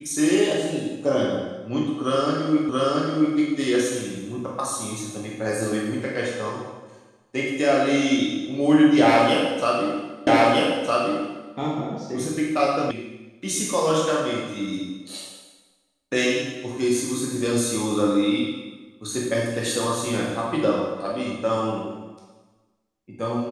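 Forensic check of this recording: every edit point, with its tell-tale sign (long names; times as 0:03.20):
0:02.69: the same again, the last 0.68 s
0:10.27: the same again, the last 1.26 s
0:12.91: cut off before it has died away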